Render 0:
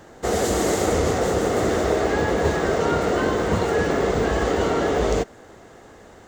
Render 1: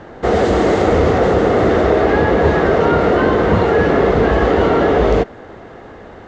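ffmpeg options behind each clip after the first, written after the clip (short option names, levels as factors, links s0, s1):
-filter_complex "[0:a]asplit=2[s0][s1];[s1]alimiter=limit=0.126:level=0:latency=1,volume=0.841[s2];[s0][s2]amix=inputs=2:normalize=0,lowpass=4100,aemphasis=mode=reproduction:type=50fm,volume=1.68"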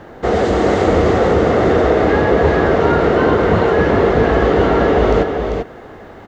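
-af "acrusher=bits=10:mix=0:aa=0.000001,aecho=1:1:393:0.531,volume=0.891"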